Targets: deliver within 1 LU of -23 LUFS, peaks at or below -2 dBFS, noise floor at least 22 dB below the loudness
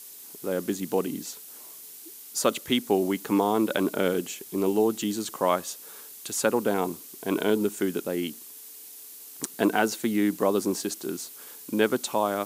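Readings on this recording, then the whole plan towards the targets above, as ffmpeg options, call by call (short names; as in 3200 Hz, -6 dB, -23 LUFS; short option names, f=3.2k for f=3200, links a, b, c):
noise floor -45 dBFS; noise floor target -49 dBFS; loudness -27.0 LUFS; peak -7.0 dBFS; loudness target -23.0 LUFS
-> -af "afftdn=nr=6:nf=-45"
-af "volume=4dB"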